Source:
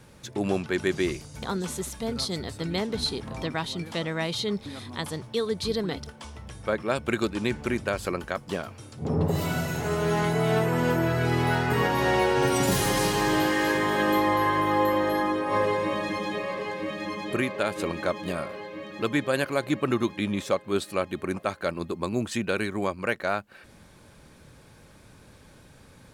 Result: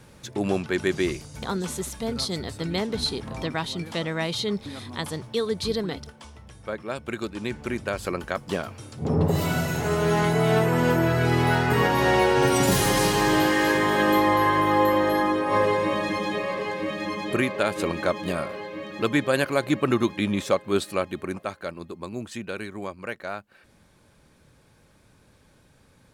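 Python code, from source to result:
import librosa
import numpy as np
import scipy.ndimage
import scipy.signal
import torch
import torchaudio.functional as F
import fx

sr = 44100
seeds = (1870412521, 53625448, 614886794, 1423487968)

y = fx.gain(x, sr, db=fx.line((5.71, 1.5), (6.46, -5.0), (7.18, -5.0), (8.5, 3.0), (20.81, 3.0), (21.82, -6.0)))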